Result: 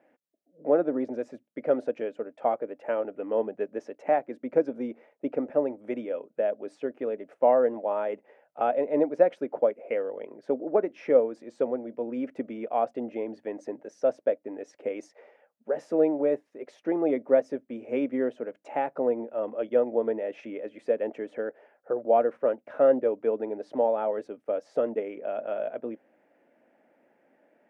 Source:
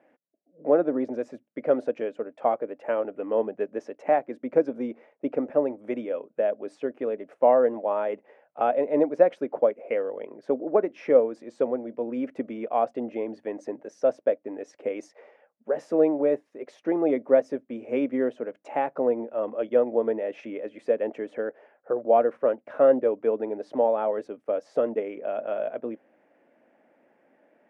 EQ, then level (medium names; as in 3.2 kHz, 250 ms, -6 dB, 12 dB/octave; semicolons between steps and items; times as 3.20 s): band-stop 1.1 kHz, Q 15; -2.0 dB